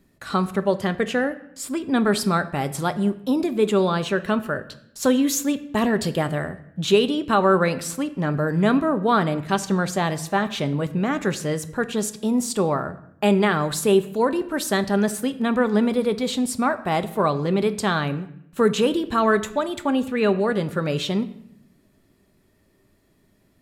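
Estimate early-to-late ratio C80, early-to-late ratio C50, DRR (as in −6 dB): 17.5 dB, 15.0 dB, 11.0 dB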